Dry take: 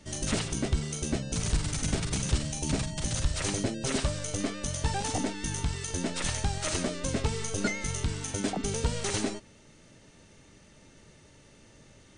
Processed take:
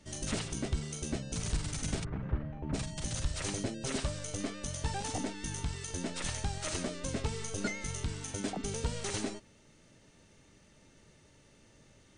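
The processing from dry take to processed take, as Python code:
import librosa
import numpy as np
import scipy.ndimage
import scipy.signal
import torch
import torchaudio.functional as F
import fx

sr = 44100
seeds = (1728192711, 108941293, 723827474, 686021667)

y = fx.lowpass(x, sr, hz=1700.0, slope=24, at=(2.03, 2.73), fade=0.02)
y = y * 10.0 ** (-5.5 / 20.0)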